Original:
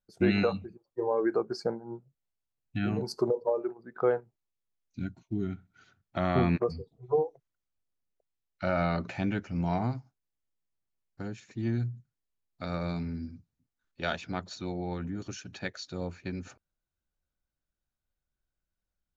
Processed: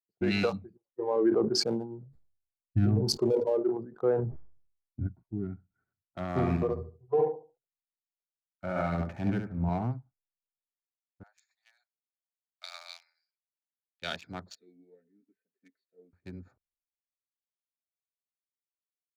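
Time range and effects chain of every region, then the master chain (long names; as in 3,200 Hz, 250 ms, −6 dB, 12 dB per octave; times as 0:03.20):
0:01.16–0:05.07: tilt shelving filter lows +6.5 dB, about 630 Hz + notch filter 180 Hz, Q 5.4 + level that may fall only so fast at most 67 dB per second
0:06.29–0:09.69: low-pass filter 2,700 Hz + hard clipping −16 dBFS + repeating echo 71 ms, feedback 35%, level −4.5 dB
0:11.23–0:14.02: Butterworth high-pass 620 Hz 72 dB per octave + spectral tilt +3 dB per octave
0:14.55–0:16.13: comb filter 4.5 ms, depth 75% + formant filter swept between two vowels e-i 2.2 Hz
whole clip: adaptive Wiener filter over 15 samples; brickwall limiter −19.5 dBFS; multiband upward and downward expander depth 100%; level −1.5 dB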